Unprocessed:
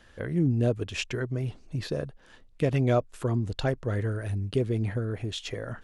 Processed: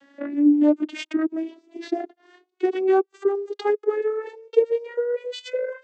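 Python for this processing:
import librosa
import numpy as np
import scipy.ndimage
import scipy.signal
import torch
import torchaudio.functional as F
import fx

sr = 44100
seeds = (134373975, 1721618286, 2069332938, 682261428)

y = fx.vocoder_glide(x, sr, note=61, semitones=11)
y = y * librosa.db_to_amplitude(6.0)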